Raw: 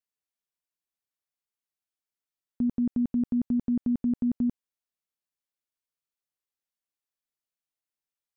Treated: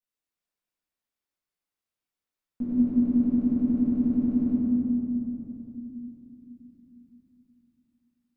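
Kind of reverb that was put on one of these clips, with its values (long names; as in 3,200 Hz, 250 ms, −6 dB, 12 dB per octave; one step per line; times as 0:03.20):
rectangular room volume 160 cubic metres, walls hard, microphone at 2 metres
level −9 dB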